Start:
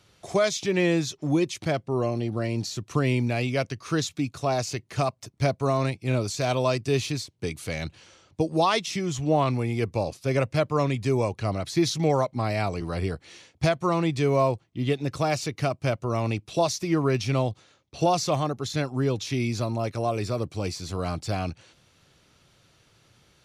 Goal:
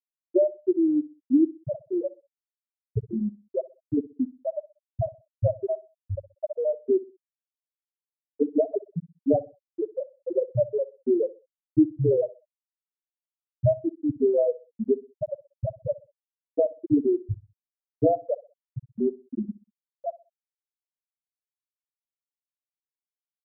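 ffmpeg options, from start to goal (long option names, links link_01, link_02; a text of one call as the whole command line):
ffmpeg -i in.wav -filter_complex "[0:a]aeval=exprs='if(lt(val(0),0),0.251*val(0),val(0))':channel_layout=same,highpass=frequency=130:width=0.5412,highpass=frequency=130:width=1.3066,afreqshift=-30,acrossover=split=820[link_01][link_02];[link_02]acompressor=threshold=-46dB:ratio=20[link_03];[link_01][link_03]amix=inputs=2:normalize=0,afftfilt=real='re*gte(hypot(re,im),0.316)':imag='im*gte(hypot(re,im),0.316)':win_size=1024:overlap=0.75,equalizer=frequency=1500:width=3.7:gain=5,asplit=2[link_04][link_05];[link_05]adelay=63,lowpass=frequency=2000:poles=1,volume=-18dB,asplit=2[link_06][link_07];[link_07]adelay=63,lowpass=frequency=2000:poles=1,volume=0.33,asplit=2[link_08][link_09];[link_09]adelay=63,lowpass=frequency=2000:poles=1,volume=0.33[link_10];[link_04][link_06][link_08][link_10]amix=inputs=4:normalize=0,volume=9dB" out.wav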